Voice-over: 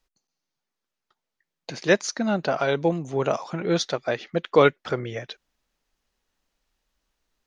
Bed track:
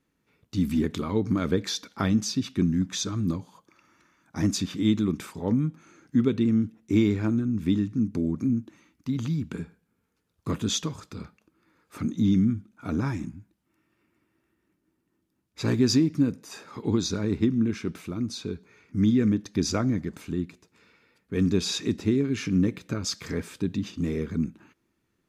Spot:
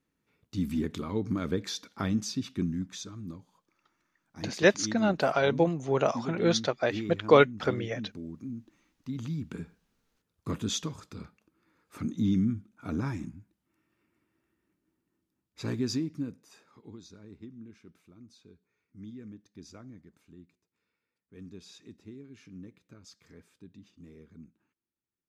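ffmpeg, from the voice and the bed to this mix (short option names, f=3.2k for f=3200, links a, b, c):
-filter_complex "[0:a]adelay=2750,volume=-2dB[a];[1:a]volume=4dB,afade=t=out:st=2.49:d=0.67:silence=0.375837,afade=t=in:st=8.53:d=1.12:silence=0.334965,afade=t=out:st=14.93:d=2.01:silence=0.11885[b];[a][b]amix=inputs=2:normalize=0"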